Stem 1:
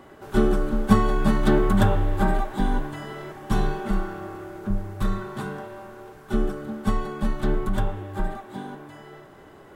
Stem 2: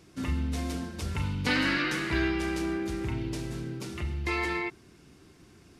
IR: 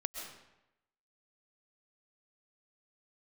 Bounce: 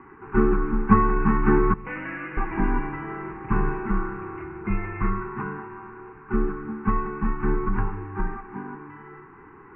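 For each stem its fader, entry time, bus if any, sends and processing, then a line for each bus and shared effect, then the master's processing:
−1.0 dB, 0.00 s, muted 0:01.74–0:02.37, send −15.5 dB, Chebyshev band-stop filter 400–950 Hz, order 2
0:01.62 −24 dB → 0:01.91 −13.5 dB, 0.40 s, send −4 dB, comb filter 6.1 ms, depth 67%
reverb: on, RT60 0.90 s, pre-delay 90 ms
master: Butterworth low-pass 2,600 Hz 96 dB per octave; parametric band 920 Hz +6 dB 1.3 octaves

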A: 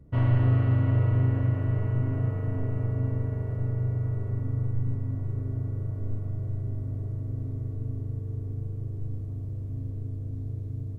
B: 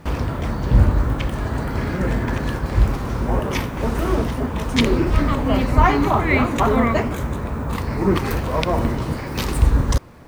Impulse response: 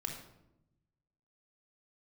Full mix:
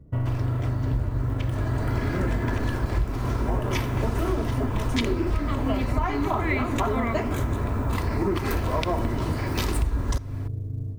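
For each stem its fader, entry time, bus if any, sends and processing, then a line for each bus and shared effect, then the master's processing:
+3.0 dB, 0.00 s, no send, high-shelf EQ 2,300 Hz −9.5 dB; downward compressor, threshold −24 dBFS, peak gain reduction 7.5 dB; every ending faded ahead of time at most 150 dB per second
0:01.42 −9 dB → 0:02.00 −1 dB, 0.20 s, send −19 dB, comb filter 3 ms, depth 33%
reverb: on, RT60 0.85 s, pre-delay 23 ms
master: floating-point word with a short mantissa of 6 bits; downward compressor 6 to 1, threshold −21 dBFS, peak gain reduction 13.5 dB

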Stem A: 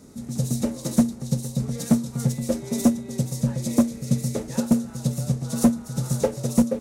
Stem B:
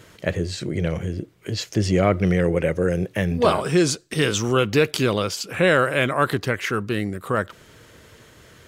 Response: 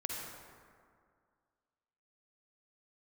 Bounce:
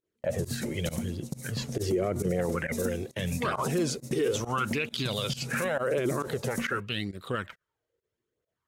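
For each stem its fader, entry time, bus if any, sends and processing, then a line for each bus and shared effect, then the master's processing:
−8.5 dB, 0.00 s, send −10.5 dB, noise gate −30 dBFS, range −12 dB; high-shelf EQ 9,400 Hz +9.5 dB; downward compressor, threshold −24 dBFS, peak gain reduction 12 dB
−5.5 dB, 0.00 s, no send, flanger 0.83 Hz, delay 0 ms, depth 2.8 ms, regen −25%; auto-filter bell 0.49 Hz 360–4,100 Hz +16 dB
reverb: on, RT60 2.1 s, pre-delay 42 ms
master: noise gate −41 dBFS, range −32 dB; fake sidechain pumping 135 BPM, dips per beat 1, −22 dB, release 80 ms; brickwall limiter −19.5 dBFS, peak gain reduction 12.5 dB

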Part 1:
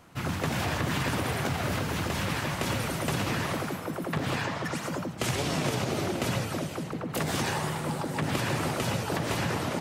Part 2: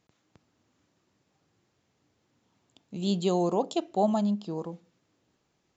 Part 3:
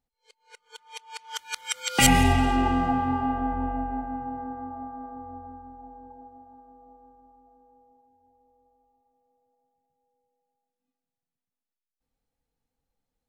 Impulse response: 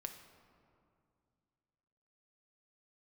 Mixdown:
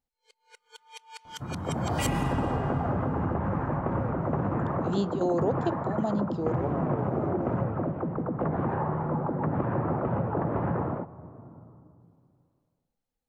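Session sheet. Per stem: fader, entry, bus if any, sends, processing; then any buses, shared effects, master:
−1.0 dB, 1.25 s, send −6.5 dB, low-pass filter 1,200 Hz 24 dB per octave; automatic gain control gain up to 11 dB
−3.5 dB, 1.90 s, no send, parametric band 440 Hz +10.5 dB 1.8 octaves; automatic gain control gain up to 13 dB; gate pattern "x.xx.xxxxxxxx.xx" 136 BPM −12 dB
−4.5 dB, 0.00 s, send −19.5 dB, no processing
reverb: on, RT60 2.4 s, pre-delay 4 ms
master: downward compressor 1.5 to 1, threshold −43 dBFS, peak gain reduction 12 dB

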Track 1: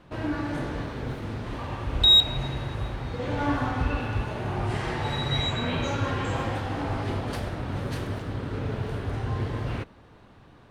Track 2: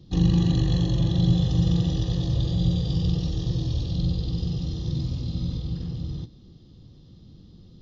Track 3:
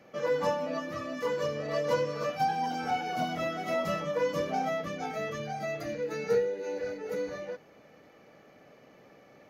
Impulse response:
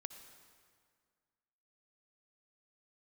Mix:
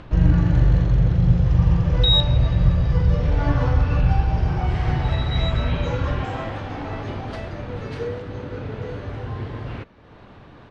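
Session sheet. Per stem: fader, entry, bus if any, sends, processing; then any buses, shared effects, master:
−1.0 dB, 0.00 s, no send, upward compression, threshold −34 dBFS
+1.5 dB, 0.00 s, no send, low-shelf EQ 110 Hz +11.5 dB; phaser with its sweep stopped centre 1,000 Hz, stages 6
−3.5 dB, 1.70 s, no send, no processing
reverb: not used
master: low-pass filter 4,600 Hz 12 dB per octave

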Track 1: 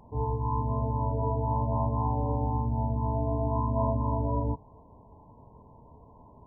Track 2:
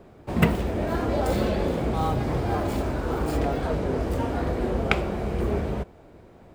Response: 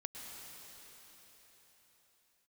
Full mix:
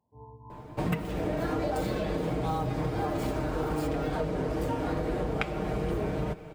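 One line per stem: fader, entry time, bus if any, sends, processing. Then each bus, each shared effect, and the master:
−15.5 dB, 0.00 s, no send, high-pass filter 85 Hz; expander for the loud parts 1.5 to 1, over −44 dBFS
+0.5 dB, 0.50 s, send −17.5 dB, comb filter 6.5 ms, depth 64%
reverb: on, RT60 4.5 s, pre-delay 99 ms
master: downward compressor 12 to 1, threshold −26 dBFS, peak gain reduction 17 dB

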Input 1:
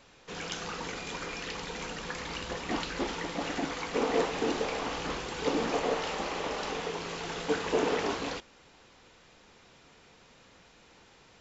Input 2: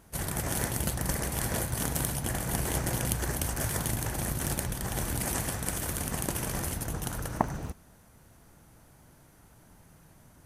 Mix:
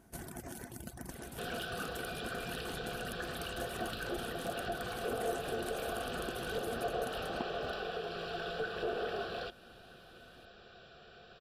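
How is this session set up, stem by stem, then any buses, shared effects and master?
+2.0 dB, 1.10 s, no send, downward compressor 2 to 1, threshold −42 dBFS, peak gain reduction 11 dB; asymmetric clip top −37 dBFS; phaser with its sweep stopped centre 1,400 Hz, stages 8
−8.0 dB, 0.00 s, no send, downward compressor 6 to 1, threshold −35 dBFS, peak gain reduction 15.5 dB; reverb reduction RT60 1.1 s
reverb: not used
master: hollow resonant body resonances 250/350/690/1,500 Hz, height 10 dB, ringing for 45 ms

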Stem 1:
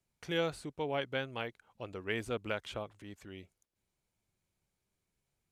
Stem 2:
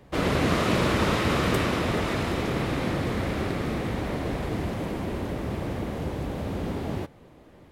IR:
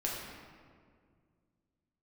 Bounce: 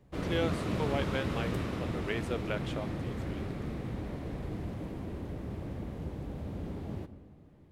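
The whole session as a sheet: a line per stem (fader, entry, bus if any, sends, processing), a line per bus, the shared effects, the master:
−1.0 dB, 0.00 s, no send, high-pass filter 300 Hz
−16.5 dB, 0.00 s, send −14 dB, no processing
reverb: on, RT60 2.0 s, pre-delay 6 ms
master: low-shelf EQ 350 Hz +9 dB

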